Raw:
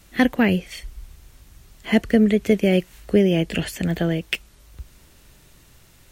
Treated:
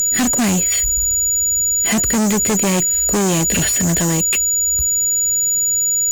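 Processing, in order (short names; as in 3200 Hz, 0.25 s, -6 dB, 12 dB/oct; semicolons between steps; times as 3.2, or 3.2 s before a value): whine 6900 Hz -26 dBFS; fuzz box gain 33 dB, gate -36 dBFS; gain -1 dB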